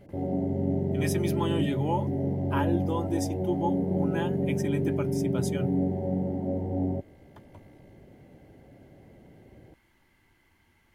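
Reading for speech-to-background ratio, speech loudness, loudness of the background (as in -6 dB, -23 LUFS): -4.5 dB, -33.5 LUFS, -29.0 LUFS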